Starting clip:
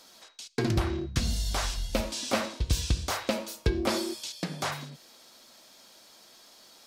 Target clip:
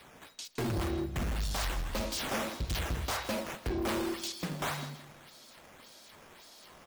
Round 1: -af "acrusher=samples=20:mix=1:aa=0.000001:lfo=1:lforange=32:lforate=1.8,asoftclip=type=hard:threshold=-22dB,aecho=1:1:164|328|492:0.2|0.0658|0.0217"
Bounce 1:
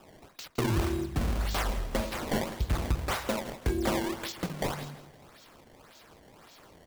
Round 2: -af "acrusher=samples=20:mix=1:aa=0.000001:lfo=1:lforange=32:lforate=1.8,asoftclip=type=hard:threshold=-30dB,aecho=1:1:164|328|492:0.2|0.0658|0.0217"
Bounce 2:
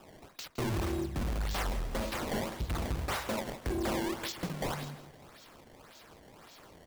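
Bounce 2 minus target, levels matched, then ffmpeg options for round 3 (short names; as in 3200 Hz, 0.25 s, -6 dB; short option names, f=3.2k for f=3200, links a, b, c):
decimation with a swept rate: distortion +5 dB
-af "acrusher=samples=6:mix=1:aa=0.000001:lfo=1:lforange=9.6:lforate=1.8,asoftclip=type=hard:threshold=-30dB,aecho=1:1:164|328|492:0.2|0.0658|0.0217"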